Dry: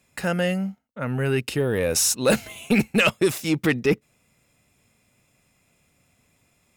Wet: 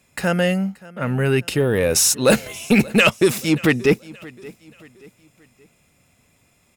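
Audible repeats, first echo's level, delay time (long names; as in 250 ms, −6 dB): 2, −21.5 dB, 578 ms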